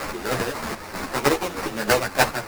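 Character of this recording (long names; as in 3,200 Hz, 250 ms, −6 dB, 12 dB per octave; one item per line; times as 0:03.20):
a quantiser's noise floor 6 bits, dither triangular
chopped level 3.2 Hz, depth 60%, duty 35%
aliases and images of a low sample rate 3,300 Hz, jitter 20%
a shimmering, thickened sound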